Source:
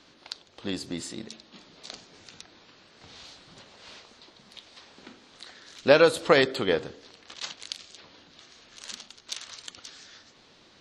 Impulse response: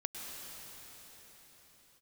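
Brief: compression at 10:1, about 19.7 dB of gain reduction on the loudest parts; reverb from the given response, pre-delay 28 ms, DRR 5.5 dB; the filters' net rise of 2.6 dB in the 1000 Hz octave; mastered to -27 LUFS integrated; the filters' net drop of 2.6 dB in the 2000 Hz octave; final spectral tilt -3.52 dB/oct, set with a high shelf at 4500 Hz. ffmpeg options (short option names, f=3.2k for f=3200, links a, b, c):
-filter_complex "[0:a]equalizer=f=1k:t=o:g=5.5,equalizer=f=2k:t=o:g=-4.5,highshelf=f=4.5k:g=-7,acompressor=threshold=-33dB:ratio=10,asplit=2[a][b];[1:a]atrim=start_sample=2205,adelay=28[c];[b][c]afir=irnorm=-1:irlink=0,volume=-6.5dB[d];[a][d]amix=inputs=2:normalize=0,volume=15.5dB"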